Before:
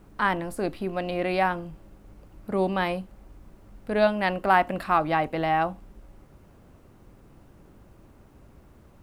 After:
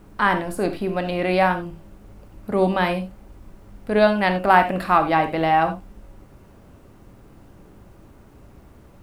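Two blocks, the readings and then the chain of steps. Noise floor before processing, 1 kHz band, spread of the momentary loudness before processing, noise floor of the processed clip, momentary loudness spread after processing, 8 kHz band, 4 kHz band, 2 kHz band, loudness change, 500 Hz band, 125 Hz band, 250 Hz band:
-54 dBFS, +5.5 dB, 13 LU, -49 dBFS, 13 LU, no reading, +5.5 dB, +5.0 dB, +5.5 dB, +5.0 dB, +6.0 dB, +6.0 dB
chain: gated-style reverb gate 110 ms flat, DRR 7.5 dB; trim +4.5 dB

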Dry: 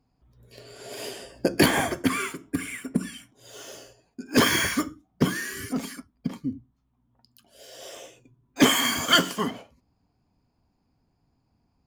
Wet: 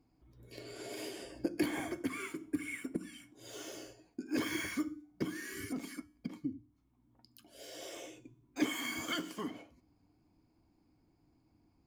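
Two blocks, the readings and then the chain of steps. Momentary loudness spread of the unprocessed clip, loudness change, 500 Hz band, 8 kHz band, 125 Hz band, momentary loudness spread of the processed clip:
23 LU, -15.0 dB, -13.5 dB, -16.0 dB, -17.0 dB, 16 LU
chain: compression 2.5:1, threshold -42 dBFS, peak gain reduction 19 dB; feedback comb 99 Hz, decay 0.58 s, harmonics odd, mix 40%; small resonant body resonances 320/2200 Hz, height 13 dB, ringing for 60 ms; trim +1 dB

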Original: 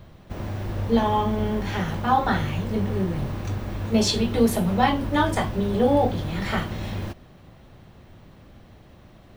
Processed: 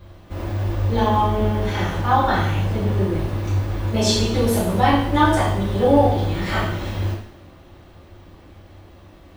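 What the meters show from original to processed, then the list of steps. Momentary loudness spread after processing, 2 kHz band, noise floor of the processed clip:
9 LU, +4.0 dB, -46 dBFS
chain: two-slope reverb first 0.59 s, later 1.8 s, DRR -6 dB; trim -3 dB

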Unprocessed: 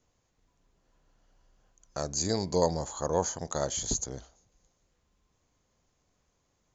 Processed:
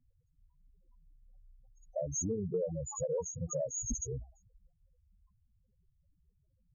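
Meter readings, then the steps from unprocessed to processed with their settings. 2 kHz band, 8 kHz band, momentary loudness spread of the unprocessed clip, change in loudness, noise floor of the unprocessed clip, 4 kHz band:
under -30 dB, no reading, 10 LU, -6.0 dB, -75 dBFS, under -40 dB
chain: loudest bins only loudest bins 4; compression 6:1, threshold -39 dBFS, peak gain reduction 14 dB; trim +7 dB

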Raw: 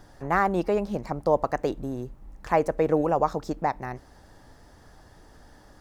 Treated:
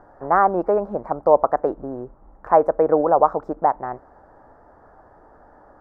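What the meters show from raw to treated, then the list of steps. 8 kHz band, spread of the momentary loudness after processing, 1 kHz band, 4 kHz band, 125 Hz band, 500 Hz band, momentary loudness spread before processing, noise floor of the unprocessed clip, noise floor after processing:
no reading, 15 LU, +8.0 dB, under -20 dB, -4.0 dB, +7.0 dB, 12 LU, -53 dBFS, -51 dBFS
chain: FFT filter 150 Hz 0 dB, 650 Hz +14 dB, 1.4 kHz +11 dB, 3.1 kHz -20 dB; trim -5 dB

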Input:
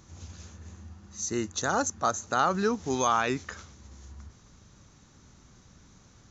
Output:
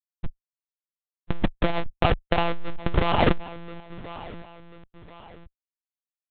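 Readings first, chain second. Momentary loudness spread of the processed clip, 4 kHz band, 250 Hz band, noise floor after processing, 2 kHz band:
20 LU, +5.0 dB, +3.0 dB, under -85 dBFS, +2.0 dB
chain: reverb removal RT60 0.78 s; steep low-pass 1.1 kHz 36 dB/octave; short-mantissa float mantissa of 6-bit; Schmitt trigger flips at -34 dBFS; on a send: feedback delay 1039 ms, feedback 39%, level -24 dB; on the sum: monotone LPC vocoder at 8 kHz 170 Hz; loudness maximiser +24.5 dB; transformer saturation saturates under 96 Hz; trim -2.5 dB

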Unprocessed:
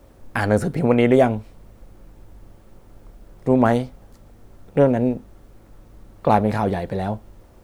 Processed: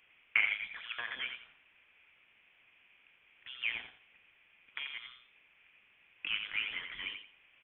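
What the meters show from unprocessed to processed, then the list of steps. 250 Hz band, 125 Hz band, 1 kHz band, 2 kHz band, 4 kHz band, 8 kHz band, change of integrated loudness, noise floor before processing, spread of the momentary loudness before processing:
under -40 dB, under -40 dB, -29.0 dB, -3.5 dB, +2.5 dB, no reading, -16.0 dB, -49 dBFS, 14 LU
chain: compression 4:1, threshold -21 dBFS, peak gain reduction 9.5 dB; resonant high-pass 1.4 kHz, resonance Q 2.8; on a send: feedback delay 87 ms, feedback 24%, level -7 dB; on the sum: frequency inversion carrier 3.8 kHz; trim -7 dB

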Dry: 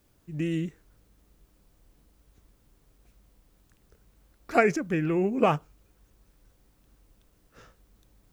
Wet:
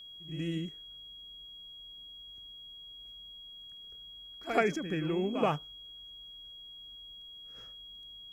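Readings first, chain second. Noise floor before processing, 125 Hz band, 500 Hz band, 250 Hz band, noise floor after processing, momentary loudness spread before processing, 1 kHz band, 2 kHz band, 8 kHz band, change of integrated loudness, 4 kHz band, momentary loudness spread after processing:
-66 dBFS, -6.0 dB, -6.0 dB, -6.0 dB, -49 dBFS, 9 LU, -6.0 dB, -6.0 dB, -6.0 dB, -11.0 dB, +11.0 dB, 16 LU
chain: reverse echo 79 ms -9.5 dB; whistle 3.3 kHz -40 dBFS; trim -6.5 dB

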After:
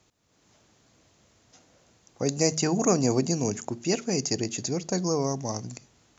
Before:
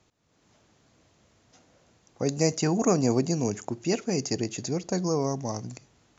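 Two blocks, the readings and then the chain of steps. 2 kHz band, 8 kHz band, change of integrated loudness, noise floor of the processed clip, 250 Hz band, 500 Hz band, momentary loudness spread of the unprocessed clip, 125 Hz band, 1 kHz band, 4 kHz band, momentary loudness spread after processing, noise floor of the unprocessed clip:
+1.0 dB, no reading, +0.5 dB, -66 dBFS, -0.5 dB, 0.0 dB, 9 LU, -0.5 dB, 0.0 dB, +3.5 dB, 9 LU, -67 dBFS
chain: treble shelf 4.4 kHz +6 dB; de-hum 78.09 Hz, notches 3

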